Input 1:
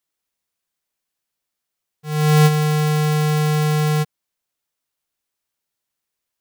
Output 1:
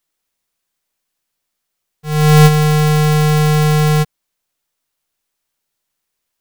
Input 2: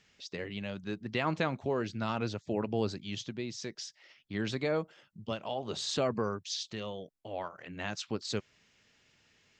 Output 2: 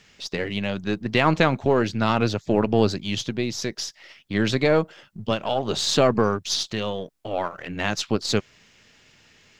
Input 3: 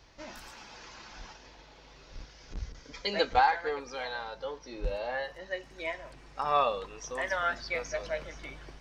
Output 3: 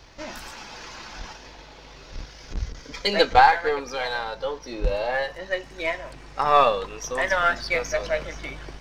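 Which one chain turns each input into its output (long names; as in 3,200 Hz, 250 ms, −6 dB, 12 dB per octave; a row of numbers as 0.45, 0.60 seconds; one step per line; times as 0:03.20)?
gain on one half-wave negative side −3 dB
normalise the peak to −3 dBFS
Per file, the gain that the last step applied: +7.0, +13.0, +10.0 decibels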